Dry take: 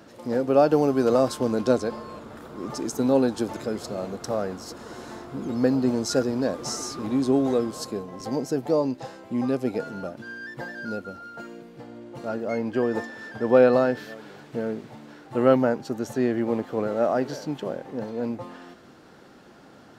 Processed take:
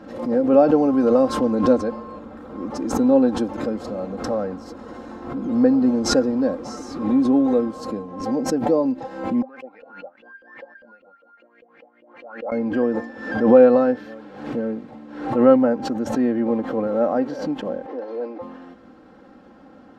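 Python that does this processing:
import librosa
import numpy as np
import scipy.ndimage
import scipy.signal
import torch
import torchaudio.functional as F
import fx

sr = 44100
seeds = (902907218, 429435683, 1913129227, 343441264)

y = fx.filter_lfo_bandpass(x, sr, shape='saw_up', hz=5.0, low_hz=470.0, high_hz=3000.0, q=7.3, at=(9.42, 12.52))
y = fx.ellip_bandpass(y, sr, low_hz=340.0, high_hz=5400.0, order=3, stop_db=40, at=(17.86, 18.41), fade=0.02)
y = fx.lowpass(y, sr, hz=1100.0, slope=6)
y = y + 0.64 * np.pad(y, (int(3.8 * sr / 1000.0), 0))[:len(y)]
y = fx.pre_swell(y, sr, db_per_s=77.0)
y = y * librosa.db_to_amplitude(2.0)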